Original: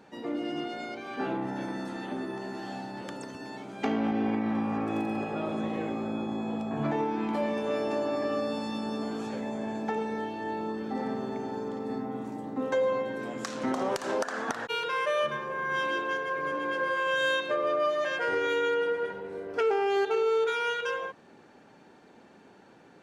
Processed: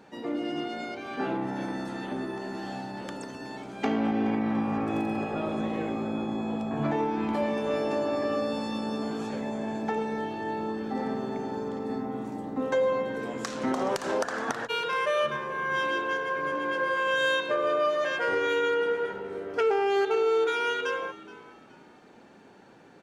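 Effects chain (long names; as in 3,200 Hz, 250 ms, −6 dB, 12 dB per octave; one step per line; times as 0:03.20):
echo with shifted repeats 423 ms, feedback 34%, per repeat −64 Hz, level −18.5 dB
level +1.5 dB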